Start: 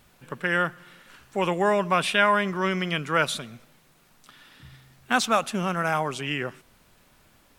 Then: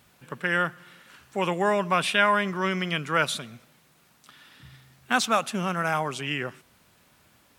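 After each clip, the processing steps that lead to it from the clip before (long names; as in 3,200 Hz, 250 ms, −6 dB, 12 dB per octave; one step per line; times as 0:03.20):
high-pass filter 73 Hz
parametric band 420 Hz −2 dB 2.3 octaves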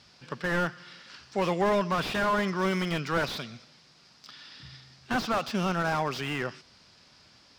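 low-pass with resonance 5,000 Hz, resonance Q 5.6
slew-rate limiting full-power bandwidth 66 Hz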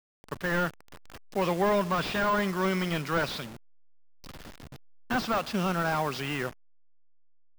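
hold until the input has moved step −37.5 dBFS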